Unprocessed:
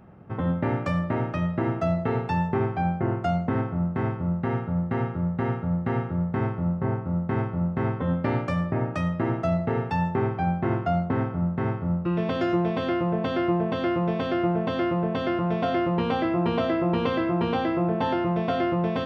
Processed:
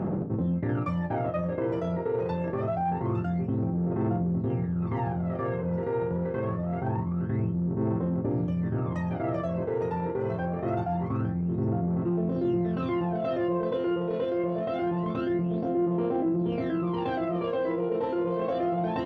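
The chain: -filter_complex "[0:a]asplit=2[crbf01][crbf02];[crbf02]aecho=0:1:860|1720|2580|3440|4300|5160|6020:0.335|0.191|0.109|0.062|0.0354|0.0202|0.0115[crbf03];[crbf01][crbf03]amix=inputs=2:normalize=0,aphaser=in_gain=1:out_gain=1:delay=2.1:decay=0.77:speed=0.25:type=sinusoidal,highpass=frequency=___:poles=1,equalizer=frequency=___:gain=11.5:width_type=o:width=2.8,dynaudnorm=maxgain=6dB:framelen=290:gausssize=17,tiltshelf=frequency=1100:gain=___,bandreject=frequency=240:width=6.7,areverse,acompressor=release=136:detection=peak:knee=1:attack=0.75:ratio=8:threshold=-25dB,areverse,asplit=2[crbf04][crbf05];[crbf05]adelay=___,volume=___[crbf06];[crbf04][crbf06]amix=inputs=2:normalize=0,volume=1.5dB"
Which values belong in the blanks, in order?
180, 270, 3, 37, -12dB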